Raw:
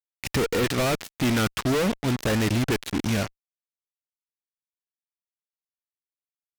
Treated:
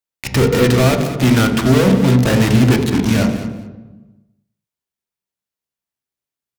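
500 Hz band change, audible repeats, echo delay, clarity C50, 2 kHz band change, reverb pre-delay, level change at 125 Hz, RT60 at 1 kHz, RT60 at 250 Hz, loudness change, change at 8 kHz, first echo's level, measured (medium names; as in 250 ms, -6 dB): +10.0 dB, 2, 204 ms, 6.5 dB, +7.5 dB, 3 ms, +13.5 dB, 1.1 s, 1.6 s, +11.0 dB, +7.0 dB, -12.5 dB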